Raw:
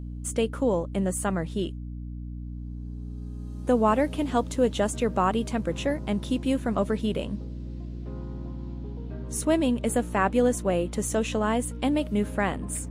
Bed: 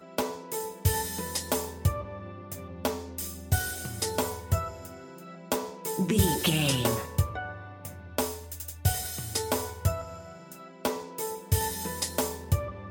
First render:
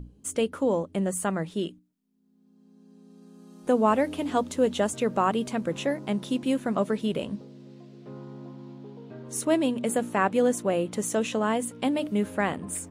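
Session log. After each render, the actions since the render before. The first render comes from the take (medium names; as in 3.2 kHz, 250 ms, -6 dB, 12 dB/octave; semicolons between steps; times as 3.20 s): hum notches 60/120/180/240/300 Hz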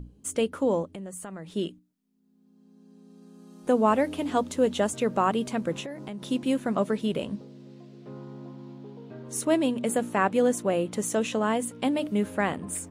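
0.87–1.52 s: compression, threshold -36 dBFS; 5.80–6.29 s: compression 8:1, threshold -33 dBFS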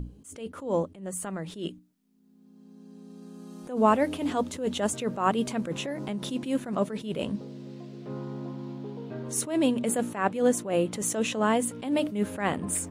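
in parallel at -1 dB: compression, threshold -33 dBFS, peak gain reduction 15 dB; on the sum: attacks held to a fixed rise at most 130 dB/s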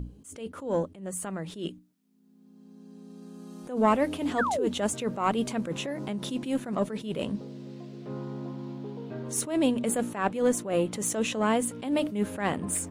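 single-diode clipper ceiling -11.5 dBFS; 4.38–4.68 s: painted sound fall 280–1900 Hz -28 dBFS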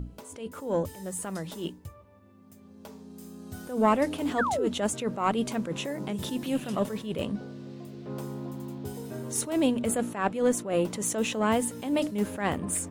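add bed -18 dB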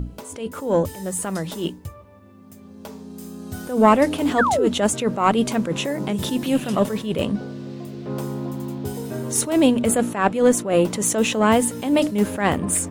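trim +8.5 dB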